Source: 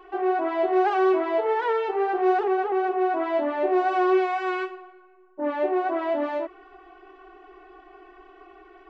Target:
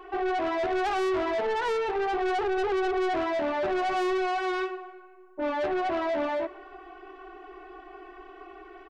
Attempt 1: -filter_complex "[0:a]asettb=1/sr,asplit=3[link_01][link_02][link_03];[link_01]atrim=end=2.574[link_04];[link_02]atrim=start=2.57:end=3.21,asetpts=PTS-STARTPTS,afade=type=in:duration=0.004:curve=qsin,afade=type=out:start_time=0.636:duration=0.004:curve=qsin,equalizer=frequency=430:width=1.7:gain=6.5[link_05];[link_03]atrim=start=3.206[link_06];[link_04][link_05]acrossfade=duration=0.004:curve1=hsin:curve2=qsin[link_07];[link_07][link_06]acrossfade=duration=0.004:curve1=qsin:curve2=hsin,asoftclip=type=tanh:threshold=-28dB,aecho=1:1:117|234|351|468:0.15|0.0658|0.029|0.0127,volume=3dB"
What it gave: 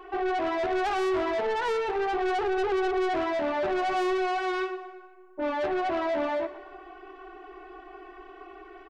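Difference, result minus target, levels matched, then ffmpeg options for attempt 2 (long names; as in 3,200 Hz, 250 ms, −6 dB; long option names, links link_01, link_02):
echo-to-direct +8 dB
-filter_complex "[0:a]asettb=1/sr,asplit=3[link_01][link_02][link_03];[link_01]atrim=end=2.574[link_04];[link_02]atrim=start=2.57:end=3.21,asetpts=PTS-STARTPTS,afade=type=in:duration=0.004:curve=qsin,afade=type=out:start_time=0.636:duration=0.004:curve=qsin,equalizer=frequency=430:width=1.7:gain=6.5[link_05];[link_03]atrim=start=3.206[link_06];[link_04][link_05]acrossfade=duration=0.004:curve1=hsin:curve2=qsin[link_07];[link_07][link_06]acrossfade=duration=0.004:curve1=qsin:curve2=hsin,asoftclip=type=tanh:threshold=-28dB,aecho=1:1:117|234|351:0.0596|0.0262|0.0115,volume=3dB"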